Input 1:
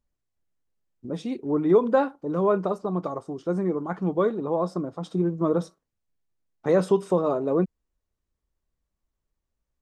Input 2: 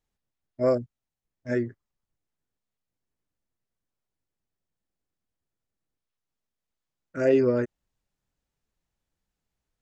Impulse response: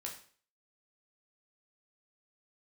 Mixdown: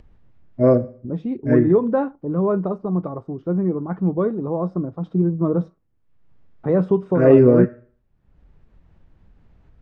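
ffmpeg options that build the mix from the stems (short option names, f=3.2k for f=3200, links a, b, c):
-filter_complex "[0:a]equalizer=f=89:t=o:w=1.8:g=4.5,volume=-3dB[a];[1:a]volume=1.5dB,asplit=2[b][c];[c]volume=-3.5dB[d];[2:a]atrim=start_sample=2205[e];[d][e]afir=irnorm=-1:irlink=0[f];[a][b][f]amix=inputs=3:normalize=0,lowpass=2.1k,lowshelf=f=330:g=11,acompressor=mode=upward:threshold=-36dB:ratio=2.5"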